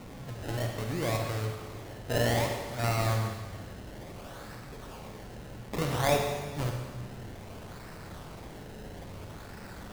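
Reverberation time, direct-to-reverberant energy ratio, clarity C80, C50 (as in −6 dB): 1.5 s, 2.0 dB, 5.0 dB, 3.5 dB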